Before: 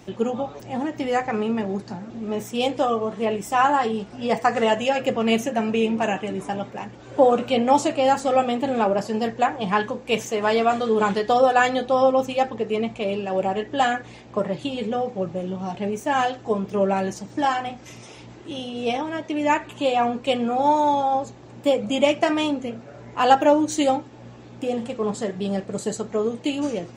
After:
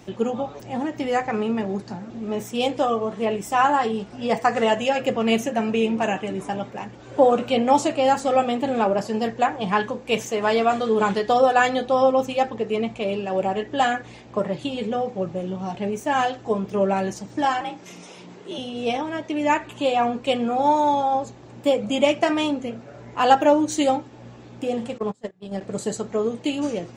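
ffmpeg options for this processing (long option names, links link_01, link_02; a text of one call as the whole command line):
ffmpeg -i in.wav -filter_complex "[0:a]asettb=1/sr,asplit=3[link_01][link_02][link_03];[link_01]atrim=end=17.614[link_04];[link_02]atrim=start=17.61:end=18.58,asetpts=PTS-STARTPTS,afade=type=in:duration=0.004:curve=qsin,afade=type=out:start_time=0.966:duration=0.004:curve=qsin,afreqshift=58[link_05];[link_03]atrim=start=18.576[link_06];[link_04][link_05]acrossfade=duration=0.004:curve1=hsin:curve2=qsin[link_07];[link_07][link_06]acrossfade=duration=0.004:curve1=qsin:curve2=hsin,asettb=1/sr,asplit=3[link_08][link_09][link_10];[link_08]atrim=end=24.984[link_11];[link_09]atrim=start=24.98:end=25.61,asetpts=PTS-STARTPTS,afade=type=in:duration=0.004:curve=qsin,afade=type=out:start_time=0.626:duration=0.004:curve=qsin,agate=range=-28dB:threshold=-24dB:ratio=16:release=100:detection=peak[link_12];[link_10]atrim=start=25.606[link_13];[link_11][link_12]acrossfade=duration=0.004:curve1=hsin:curve2=qsin[link_14];[link_14][link_13]acrossfade=duration=0.004:curve1=qsin:curve2=hsin" out.wav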